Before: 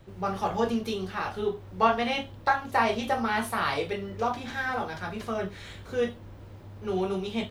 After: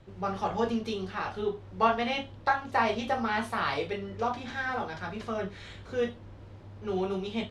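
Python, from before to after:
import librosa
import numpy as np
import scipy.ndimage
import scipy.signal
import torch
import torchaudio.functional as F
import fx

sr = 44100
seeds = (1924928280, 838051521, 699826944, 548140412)

y = scipy.signal.sosfilt(scipy.signal.butter(2, 6800.0, 'lowpass', fs=sr, output='sos'), x)
y = y * librosa.db_to_amplitude(-2.0)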